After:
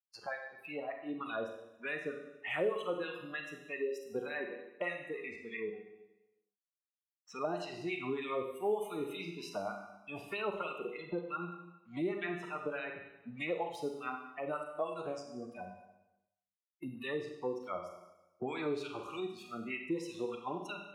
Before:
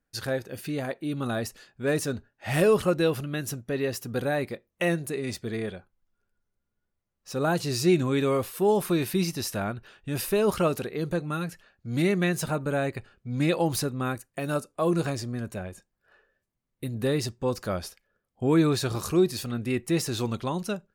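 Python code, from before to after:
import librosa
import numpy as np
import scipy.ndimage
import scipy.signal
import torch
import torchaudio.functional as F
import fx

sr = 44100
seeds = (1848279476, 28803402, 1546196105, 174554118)

y = np.sign(x) * np.maximum(np.abs(x) - 10.0 ** (-47.0 / 20.0), 0.0)
y = fx.noise_reduce_blind(y, sr, reduce_db=26)
y = fx.wah_lfo(y, sr, hz=3.3, low_hz=410.0, high_hz=3000.0, q=2.1)
y = fx.rev_schroeder(y, sr, rt60_s=0.73, comb_ms=31, drr_db=4.0)
y = fx.band_squash(y, sr, depth_pct=70)
y = y * librosa.db_to_amplitude(-2.5)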